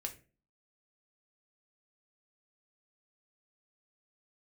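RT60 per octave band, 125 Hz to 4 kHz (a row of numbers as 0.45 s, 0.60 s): 0.45 s, 0.55 s, 0.45 s, 0.30 s, 0.35 s, 0.25 s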